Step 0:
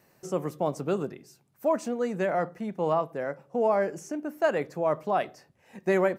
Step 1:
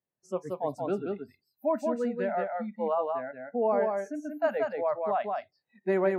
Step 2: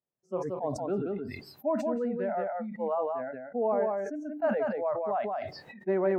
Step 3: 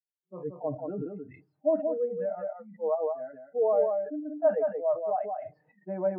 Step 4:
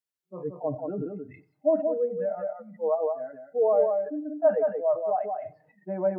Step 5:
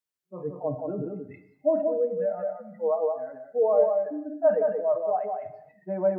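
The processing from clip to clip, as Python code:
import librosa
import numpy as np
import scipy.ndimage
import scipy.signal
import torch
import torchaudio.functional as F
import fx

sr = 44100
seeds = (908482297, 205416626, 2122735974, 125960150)

y1 = fx.noise_reduce_blind(x, sr, reduce_db=28)
y1 = fx.high_shelf(y1, sr, hz=2200.0, db=-10.5)
y1 = y1 + 10.0 ** (-3.5 / 20.0) * np.pad(y1, (int(179 * sr / 1000.0), 0))[:len(y1)]
y1 = y1 * librosa.db_to_amplitude(-1.5)
y2 = fx.lowpass(y1, sr, hz=1000.0, slope=6)
y2 = fx.low_shelf(y2, sr, hz=190.0, db=-4.0)
y2 = fx.sustainer(y2, sr, db_per_s=39.0)
y3 = scipy.signal.sosfilt(scipy.signal.butter(4, 2800.0, 'lowpass', fs=sr, output='sos'), y2)
y3 = y3 + 0.85 * np.pad(y3, (int(6.5 * sr / 1000.0), 0))[:len(y3)]
y3 = fx.spectral_expand(y3, sr, expansion=1.5)
y4 = fx.echo_feedback(y3, sr, ms=92, feedback_pct=38, wet_db=-23.0)
y4 = y4 * librosa.db_to_amplitude(2.5)
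y5 = fx.rev_gated(y4, sr, seeds[0], gate_ms=350, shape='falling', drr_db=10.5)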